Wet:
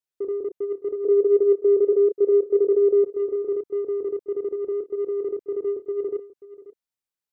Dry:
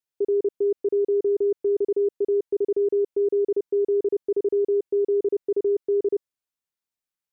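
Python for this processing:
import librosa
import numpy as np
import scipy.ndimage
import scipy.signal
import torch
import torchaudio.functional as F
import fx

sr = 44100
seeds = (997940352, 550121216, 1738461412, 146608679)

p1 = fx.chorus_voices(x, sr, voices=2, hz=0.74, base_ms=27, depth_ms=4.3, mix_pct=30)
p2 = 10.0 ** (-26.5 / 20.0) * np.tanh(p1 / 10.0 ** (-26.5 / 20.0))
p3 = p1 + (p2 * 10.0 ** (-7.5 / 20.0))
p4 = fx.band_shelf(p3, sr, hz=500.0, db=8.5, octaves=1.0, at=(1.05, 3.04))
p5 = p4 + fx.echo_single(p4, sr, ms=535, db=-16.5, dry=0)
y = p5 * 10.0 ** (-3.0 / 20.0)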